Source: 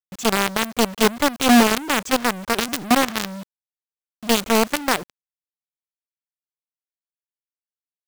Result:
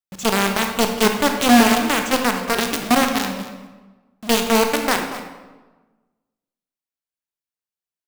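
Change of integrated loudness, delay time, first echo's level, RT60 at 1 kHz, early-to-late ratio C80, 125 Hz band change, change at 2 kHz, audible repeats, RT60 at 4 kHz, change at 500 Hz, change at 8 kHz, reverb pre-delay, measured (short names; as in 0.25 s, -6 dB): +1.5 dB, 0.234 s, -15.0 dB, 1.2 s, 7.5 dB, +2.0 dB, +1.5 dB, 1, 0.85 s, +1.5 dB, +1.0 dB, 23 ms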